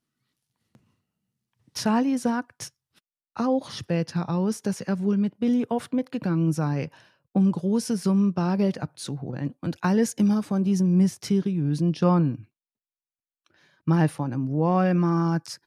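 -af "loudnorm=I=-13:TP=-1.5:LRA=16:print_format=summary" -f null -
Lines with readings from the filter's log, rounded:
Input Integrated:    -24.6 LUFS
Input True Peak:      -7.7 dBTP
Input LRA:             3.7 LU
Input Threshold:     -35.3 LUFS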